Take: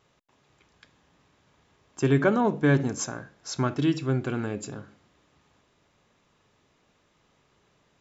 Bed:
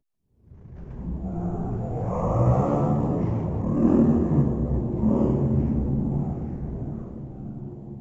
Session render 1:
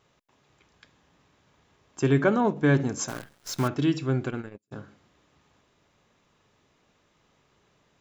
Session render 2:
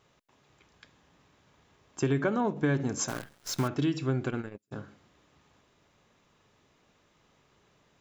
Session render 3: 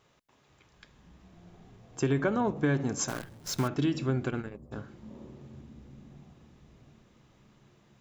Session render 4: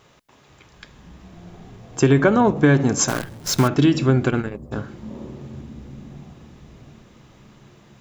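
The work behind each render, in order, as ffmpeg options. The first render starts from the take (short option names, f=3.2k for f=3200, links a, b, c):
-filter_complex "[0:a]asplit=3[a][b][c];[a]afade=t=out:st=2.05:d=0.02[d];[b]agate=range=-33dB:threshold=-26dB:ratio=3:release=100:detection=peak,afade=t=in:st=2.05:d=0.02,afade=t=out:st=2.55:d=0.02[e];[c]afade=t=in:st=2.55:d=0.02[f];[d][e][f]amix=inputs=3:normalize=0,asettb=1/sr,asplit=3[g][h][i];[g]atrim=end=3.084[j];[h]atrim=start=3.08:end=3.68,asetpts=PTS-STARTPTS,afade=t=in:d=0.004:c=qsin,afade=t=out:st=0.596:d=0.004:c=qsin,acrusher=bits=7:dc=4:mix=0:aa=0.000001[k];[i]atrim=start=3.676[l];[j][k]acrossfade=d=0.004:c1=hsin:c2=qsin[m];[m][l]acrossfade=d=0.004:c1=qsin:c2=hsin,asplit=3[n][o][p];[n]afade=t=out:st=4.28:d=0.02[q];[o]agate=range=-46dB:threshold=-29dB:ratio=16:release=100:detection=peak,afade=t=in:st=4.28:d=0.02,afade=t=out:st=4.71:d=0.02[r];[p]afade=t=in:st=4.71:d=0.02[s];[q][r][s]amix=inputs=3:normalize=0"
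-af "acompressor=threshold=-24dB:ratio=5"
-filter_complex "[1:a]volume=-26dB[a];[0:a][a]amix=inputs=2:normalize=0"
-af "volume=12dB"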